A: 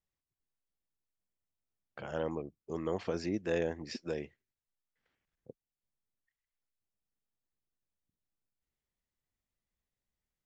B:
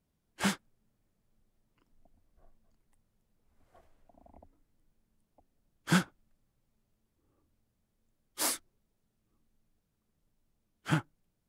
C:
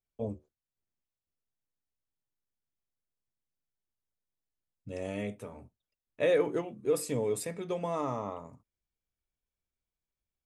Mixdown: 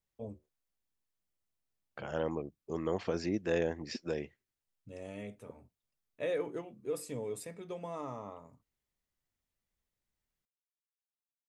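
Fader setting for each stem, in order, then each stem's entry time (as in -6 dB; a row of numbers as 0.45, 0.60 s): +1.0 dB, off, -8.0 dB; 0.00 s, off, 0.00 s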